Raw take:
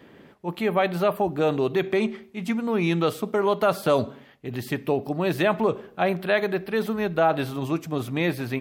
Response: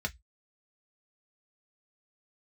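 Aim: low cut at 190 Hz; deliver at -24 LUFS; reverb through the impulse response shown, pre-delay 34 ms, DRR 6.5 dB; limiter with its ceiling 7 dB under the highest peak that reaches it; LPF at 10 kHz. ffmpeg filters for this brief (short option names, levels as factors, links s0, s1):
-filter_complex "[0:a]highpass=190,lowpass=10000,alimiter=limit=0.188:level=0:latency=1,asplit=2[s0][s1];[1:a]atrim=start_sample=2205,adelay=34[s2];[s1][s2]afir=irnorm=-1:irlink=0,volume=0.299[s3];[s0][s3]amix=inputs=2:normalize=0,volume=1.33"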